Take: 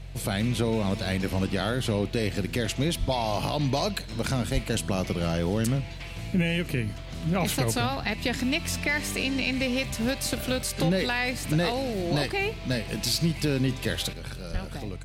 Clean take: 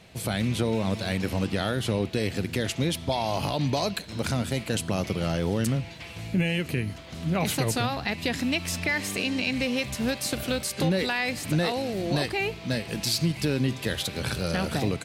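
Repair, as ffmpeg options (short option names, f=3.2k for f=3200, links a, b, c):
-filter_complex "[0:a]bandreject=f=45.4:t=h:w=4,bandreject=f=90.8:t=h:w=4,bandreject=f=136.2:t=h:w=4,asplit=3[a][b][c];[a]afade=t=out:st=2.99:d=0.02[d];[b]highpass=f=140:w=0.5412,highpass=f=140:w=1.3066,afade=t=in:st=2.99:d=0.02,afade=t=out:st=3.11:d=0.02[e];[c]afade=t=in:st=3.11:d=0.02[f];[d][e][f]amix=inputs=3:normalize=0,asplit=3[g][h][i];[g]afade=t=out:st=4.53:d=0.02[j];[h]highpass=f=140:w=0.5412,highpass=f=140:w=1.3066,afade=t=in:st=4.53:d=0.02,afade=t=out:st=4.65:d=0.02[k];[i]afade=t=in:st=4.65:d=0.02[l];[j][k][l]amix=inputs=3:normalize=0,asplit=3[m][n][o];[m]afade=t=out:st=14.52:d=0.02[p];[n]highpass=f=140:w=0.5412,highpass=f=140:w=1.3066,afade=t=in:st=14.52:d=0.02,afade=t=out:st=14.64:d=0.02[q];[o]afade=t=in:st=14.64:d=0.02[r];[p][q][r]amix=inputs=3:normalize=0,asetnsamples=n=441:p=0,asendcmd='14.13 volume volume 10dB',volume=0dB"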